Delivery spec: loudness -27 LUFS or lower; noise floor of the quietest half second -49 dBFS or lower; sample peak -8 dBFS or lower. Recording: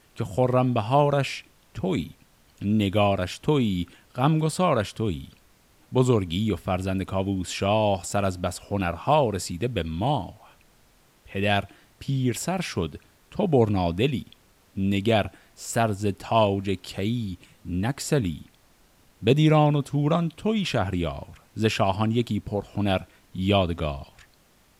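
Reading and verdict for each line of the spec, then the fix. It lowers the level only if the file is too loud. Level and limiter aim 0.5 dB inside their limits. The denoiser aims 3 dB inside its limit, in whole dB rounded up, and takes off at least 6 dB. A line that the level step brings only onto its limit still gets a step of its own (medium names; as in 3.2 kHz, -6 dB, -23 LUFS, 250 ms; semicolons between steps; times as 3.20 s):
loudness -25.0 LUFS: fail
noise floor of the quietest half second -59 dBFS: pass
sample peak -7.0 dBFS: fail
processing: trim -2.5 dB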